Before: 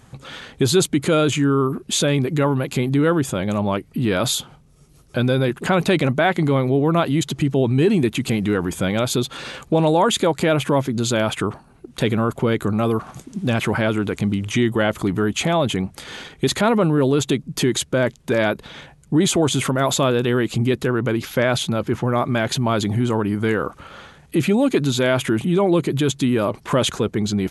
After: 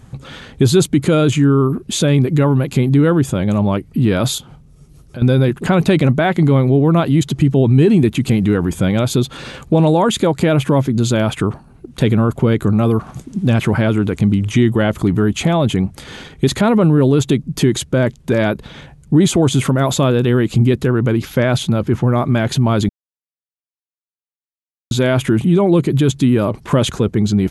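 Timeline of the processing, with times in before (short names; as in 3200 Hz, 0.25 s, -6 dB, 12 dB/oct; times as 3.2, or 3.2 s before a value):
4.38–5.22 compressor 2:1, threshold -40 dBFS
22.89–24.91 mute
whole clip: low shelf 290 Hz +10 dB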